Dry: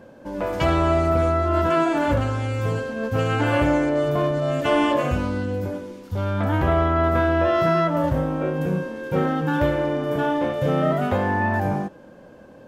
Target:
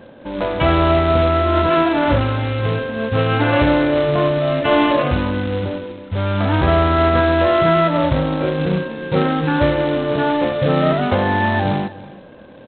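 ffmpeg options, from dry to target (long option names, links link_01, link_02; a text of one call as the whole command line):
ffmpeg -i in.wav -af "aresample=8000,acrusher=bits=3:mode=log:mix=0:aa=0.000001,aresample=44100,aecho=1:1:324:0.112,volume=4.5dB" out.wav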